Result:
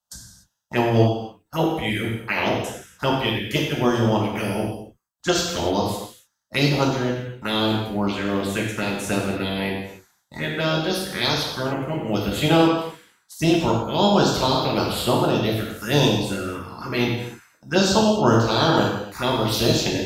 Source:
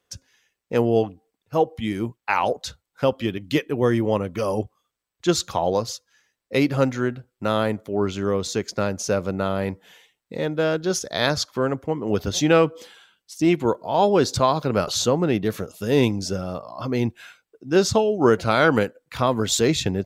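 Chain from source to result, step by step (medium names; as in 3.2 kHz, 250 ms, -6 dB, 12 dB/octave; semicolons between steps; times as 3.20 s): spectral peaks clipped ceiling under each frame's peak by 17 dB; gate -48 dBFS, range -8 dB; touch-sensitive phaser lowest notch 370 Hz, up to 2.1 kHz, full sweep at -16.5 dBFS; gated-style reverb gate 320 ms falling, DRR -2.5 dB; trim -1.5 dB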